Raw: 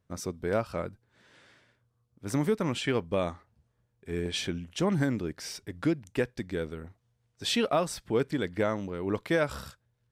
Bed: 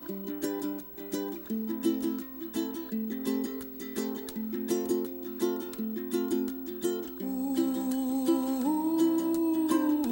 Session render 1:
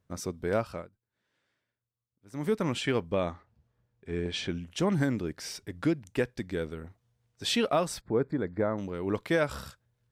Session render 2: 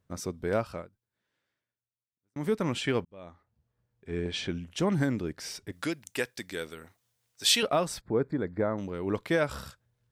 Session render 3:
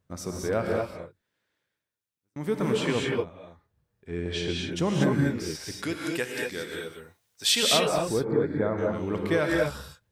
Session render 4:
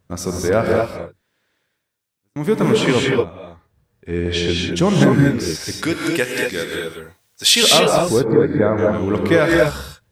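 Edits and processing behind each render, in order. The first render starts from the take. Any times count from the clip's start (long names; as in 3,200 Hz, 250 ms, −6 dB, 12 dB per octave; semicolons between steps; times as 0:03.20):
0:00.67–0:02.53: duck −19 dB, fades 0.21 s; 0:03.12–0:04.50: high-frequency loss of the air 76 metres; 0:08.01–0:08.78: moving average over 15 samples
0:00.82–0:02.36: fade out; 0:03.05–0:04.19: fade in; 0:05.72–0:07.63: spectral tilt +3.5 dB per octave
reverb whose tail is shaped and stops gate 260 ms rising, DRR −1 dB
level +10.5 dB; brickwall limiter −1 dBFS, peak gain reduction 2 dB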